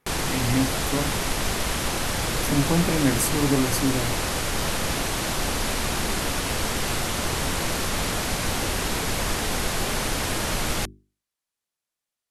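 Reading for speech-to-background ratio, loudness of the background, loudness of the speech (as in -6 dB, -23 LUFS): 0.0 dB, -25.5 LUFS, -25.5 LUFS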